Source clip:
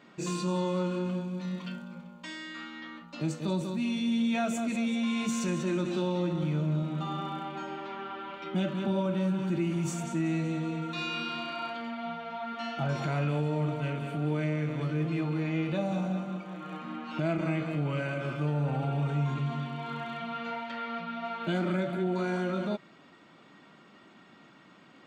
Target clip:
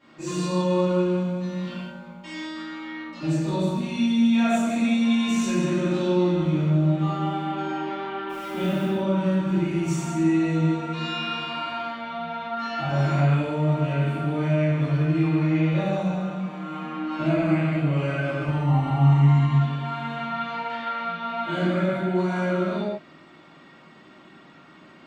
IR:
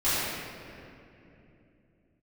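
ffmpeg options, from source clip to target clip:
-filter_complex "[0:a]asettb=1/sr,asplit=3[a][b][c];[a]atrim=end=8.294[d];[b]atrim=start=8.29:end=8.84,asetpts=PTS-STARTPTS,afade=t=in:d=0.004:c=qsin,afade=t=out:st=0.546:d=0.004:c=qsin,acrusher=bits=9:dc=4:mix=0:aa=0.000001[e];[c]atrim=start=8.836[f];[d][e]acrossfade=d=0.004:c1=hsin:c2=qsin[g];[g][f]acrossfade=d=0.004:c1=qsin:c2=hsin,asettb=1/sr,asplit=3[h][i][j];[h]atrim=end=18.474[k];[i]atrim=start=18.47:end=19.53,asetpts=PTS-STARTPTS,afade=t=in:d=0.004:c=qsin,afade=t=out:st=1.056:d=0.004:c=qsin,aecho=1:1:1:0.76,atrim=end_sample=46746[l];[j]atrim=start=19.526[m];[k][l]acrossfade=d=0.004:c1=hsin:c2=qsin[n];[n][m]acrossfade=d=0.004:c1=qsin:c2=hsin[o];[1:a]atrim=start_sample=2205,afade=t=out:st=0.27:d=0.01,atrim=end_sample=12348[p];[o][p]afir=irnorm=-1:irlink=0,volume=-7dB"

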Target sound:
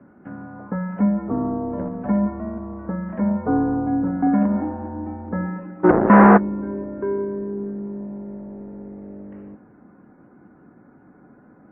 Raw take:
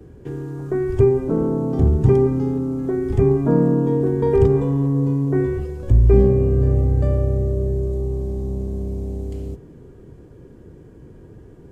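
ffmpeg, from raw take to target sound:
-filter_complex "[0:a]asplit=3[a][b][c];[a]afade=t=out:st=5.83:d=0.02[d];[b]asplit=2[e][f];[f]highpass=f=720:p=1,volume=37dB,asoftclip=type=tanh:threshold=-1.5dB[g];[e][g]amix=inputs=2:normalize=0,lowpass=f=1.3k:p=1,volume=-6dB,afade=t=in:st=5.83:d=0.02,afade=t=out:st=6.36:d=0.02[h];[c]afade=t=in:st=6.36:d=0.02[i];[d][h][i]amix=inputs=3:normalize=0,highpass=f=500:t=q:w=0.5412,highpass=f=500:t=q:w=1.307,lowpass=f=2k:t=q:w=0.5176,lowpass=f=2k:t=q:w=0.7071,lowpass=f=2k:t=q:w=1.932,afreqshift=-190,volume=6.5dB" -ar 22050 -c:a libmp3lame -b:a 24k

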